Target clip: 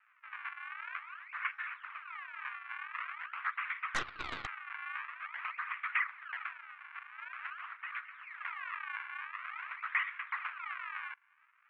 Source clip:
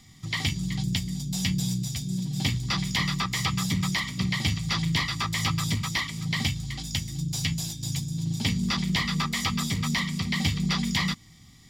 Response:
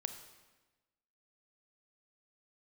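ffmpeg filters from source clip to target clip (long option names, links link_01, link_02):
-filter_complex "[0:a]acrusher=samples=39:mix=1:aa=0.000001:lfo=1:lforange=62.4:lforate=0.47,asuperpass=centerf=1700:order=8:qfactor=1.2,asplit=3[link_01][link_02][link_03];[link_01]afade=type=out:start_time=3.94:duration=0.02[link_04];[link_02]aeval=exprs='0.0794*(cos(1*acos(clip(val(0)/0.0794,-1,1)))-cos(1*PI/2))+0.02*(cos(6*acos(clip(val(0)/0.0794,-1,1)))-cos(6*PI/2))':channel_layout=same,afade=type=in:start_time=3.94:duration=0.02,afade=type=out:start_time=4.45:duration=0.02[link_05];[link_03]afade=type=in:start_time=4.45:duration=0.02[link_06];[link_04][link_05][link_06]amix=inputs=3:normalize=0,volume=-1dB"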